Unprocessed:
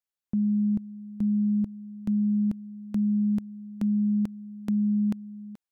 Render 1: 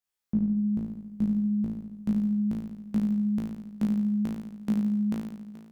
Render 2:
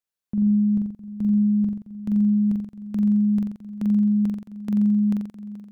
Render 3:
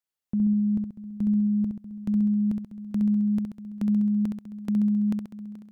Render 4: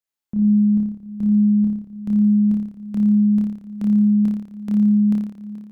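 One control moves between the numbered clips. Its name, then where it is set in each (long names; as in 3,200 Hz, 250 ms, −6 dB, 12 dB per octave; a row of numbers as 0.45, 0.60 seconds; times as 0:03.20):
flutter between parallel walls, walls apart: 3.1, 7.5, 11.4, 4.9 metres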